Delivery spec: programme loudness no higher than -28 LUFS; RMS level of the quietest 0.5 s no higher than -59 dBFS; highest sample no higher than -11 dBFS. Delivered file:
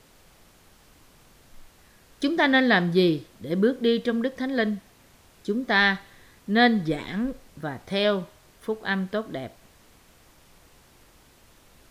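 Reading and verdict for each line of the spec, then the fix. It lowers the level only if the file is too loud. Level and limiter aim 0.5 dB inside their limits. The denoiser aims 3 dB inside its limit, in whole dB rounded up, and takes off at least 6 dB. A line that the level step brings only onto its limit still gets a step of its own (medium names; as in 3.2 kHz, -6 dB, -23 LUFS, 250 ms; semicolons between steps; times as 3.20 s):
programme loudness -24.5 LUFS: fail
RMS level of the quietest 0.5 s -56 dBFS: fail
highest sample -6.0 dBFS: fail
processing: trim -4 dB; peak limiter -11.5 dBFS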